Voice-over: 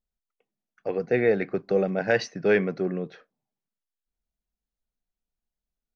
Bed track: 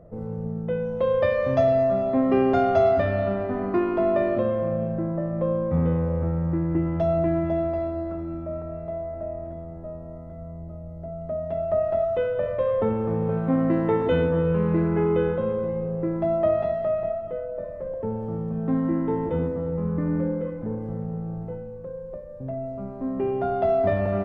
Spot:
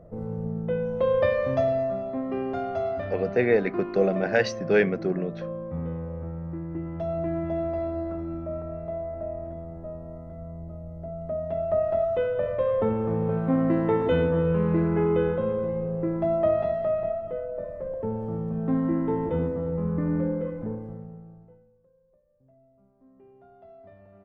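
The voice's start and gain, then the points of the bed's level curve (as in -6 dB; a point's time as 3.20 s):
2.25 s, +0.5 dB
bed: 1.26 s -0.5 dB
2.25 s -9.5 dB
6.75 s -9.5 dB
7.95 s -1 dB
20.63 s -1 dB
21.91 s -28.5 dB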